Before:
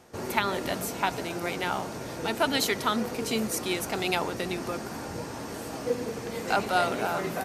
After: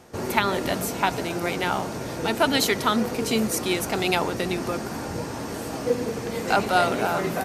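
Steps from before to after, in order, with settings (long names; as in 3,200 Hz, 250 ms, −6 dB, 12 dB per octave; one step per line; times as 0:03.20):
low-shelf EQ 370 Hz +2.5 dB
level +4 dB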